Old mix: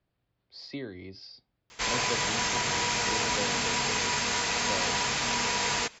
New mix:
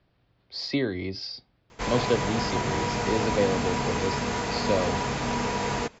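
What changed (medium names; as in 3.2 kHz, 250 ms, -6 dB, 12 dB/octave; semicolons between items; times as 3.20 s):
speech +11.5 dB; background: add tilt shelf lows +9 dB, about 1.2 kHz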